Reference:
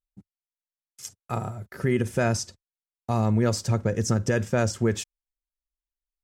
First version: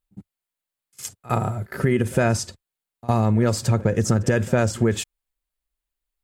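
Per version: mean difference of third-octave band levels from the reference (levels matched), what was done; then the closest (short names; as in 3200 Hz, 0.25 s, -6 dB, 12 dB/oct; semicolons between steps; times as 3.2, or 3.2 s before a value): 2.0 dB: bell 5700 Hz -7 dB 0.44 oct; compressor 3:1, threshold -25 dBFS, peak gain reduction 6 dB; pre-echo 58 ms -21 dB; gain +8.5 dB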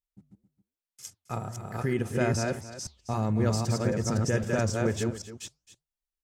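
5.5 dB: reverse delay 0.261 s, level -2.5 dB; flange 1.8 Hz, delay 2.9 ms, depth 7.7 ms, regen -90%; echo 0.267 s -14 dB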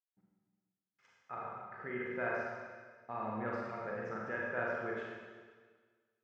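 11.0 dB: LPF 1700 Hz 24 dB/oct; differentiator; Schroeder reverb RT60 1.6 s, combs from 33 ms, DRR -4 dB; gain +5 dB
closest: first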